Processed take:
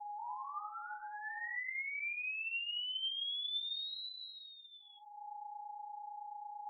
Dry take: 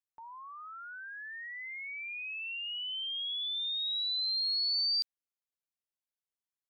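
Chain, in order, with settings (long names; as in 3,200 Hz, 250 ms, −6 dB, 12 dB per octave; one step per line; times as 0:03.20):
steady tone 840 Hz −47 dBFS
parametric band 1,500 Hz −12 dB 0.44 octaves
downward compressor 6 to 1, threshold −42 dBFS, peak gain reduction 12 dB
linear-prediction vocoder at 8 kHz pitch kept
convolution reverb RT60 1.1 s, pre-delay 5 ms, DRR 3.5 dB
gate on every frequency bin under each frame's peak −20 dB strong
level +3.5 dB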